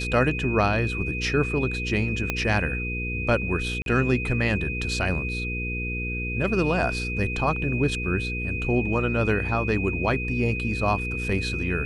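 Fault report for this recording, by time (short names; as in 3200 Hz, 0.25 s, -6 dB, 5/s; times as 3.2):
hum 60 Hz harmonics 8 -31 dBFS
tone 2500 Hz -30 dBFS
2.3 pop -10 dBFS
3.82–3.86 gap 42 ms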